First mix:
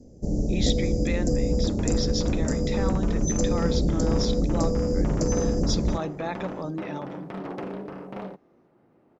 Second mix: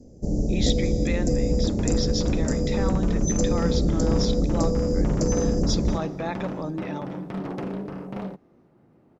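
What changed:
second sound: add tone controls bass +8 dB, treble +5 dB; reverb: on, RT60 2.4 s

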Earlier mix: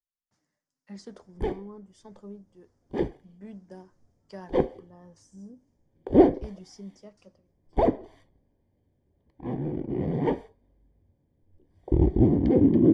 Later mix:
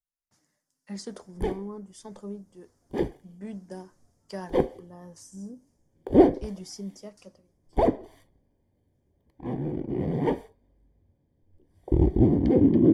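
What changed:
speech +5.0 dB; master: remove distance through air 79 m

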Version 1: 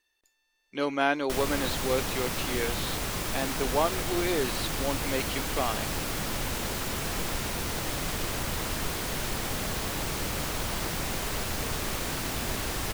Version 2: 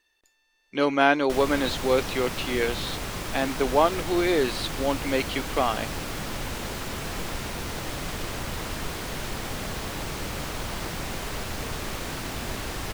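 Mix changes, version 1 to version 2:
speech +6.0 dB; master: add treble shelf 7 kHz -6.5 dB

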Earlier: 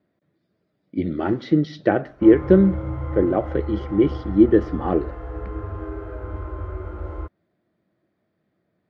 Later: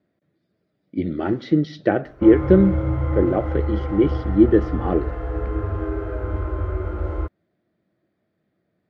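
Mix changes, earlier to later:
background +6.0 dB; master: add peaking EQ 1 kHz -3.5 dB 0.57 oct

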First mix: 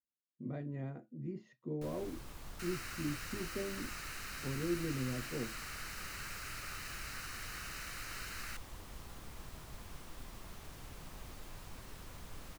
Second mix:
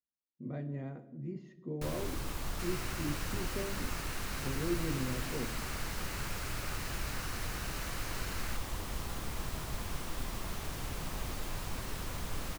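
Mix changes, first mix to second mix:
first sound +11.0 dB; reverb: on, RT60 1.1 s

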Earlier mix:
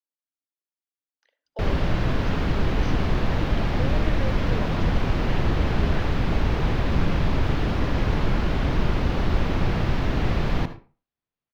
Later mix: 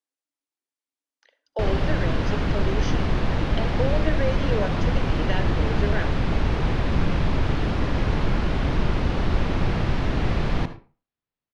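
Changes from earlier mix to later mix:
speech +9.0 dB; master: add steep low-pass 11 kHz 72 dB/octave

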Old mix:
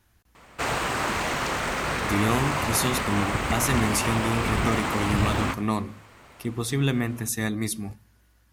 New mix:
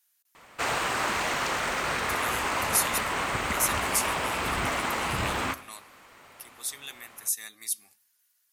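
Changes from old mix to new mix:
speech: add differentiator; master: add bass shelf 330 Hz -9 dB

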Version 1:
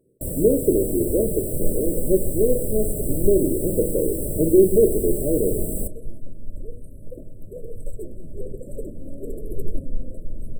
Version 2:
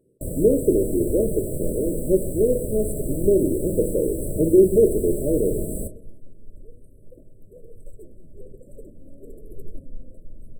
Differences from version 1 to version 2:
first sound: add treble shelf 11 kHz -11.5 dB; second sound -10.0 dB

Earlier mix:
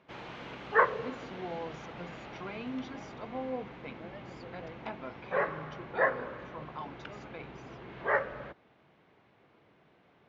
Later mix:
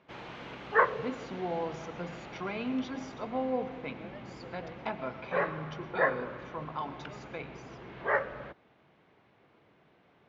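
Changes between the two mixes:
speech +4.5 dB; reverb: on, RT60 0.90 s

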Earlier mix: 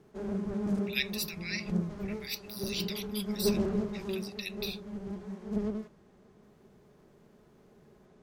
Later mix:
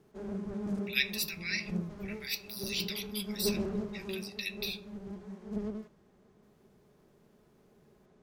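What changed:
background -4.0 dB; reverb: on, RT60 0.45 s

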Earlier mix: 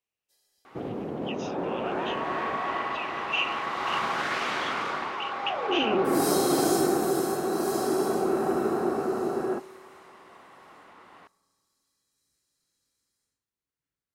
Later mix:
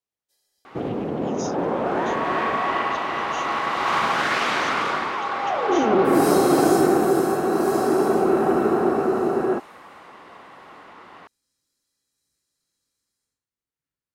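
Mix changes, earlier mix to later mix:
speech: remove resonant low-pass 2.7 kHz, resonance Q 7; first sound +7.5 dB; reverb: off

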